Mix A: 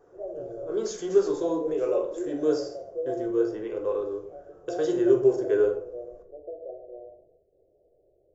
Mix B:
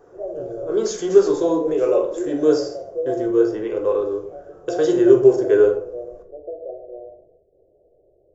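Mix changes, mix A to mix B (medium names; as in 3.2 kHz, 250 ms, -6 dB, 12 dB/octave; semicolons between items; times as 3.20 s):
speech +8.0 dB; background +6.5 dB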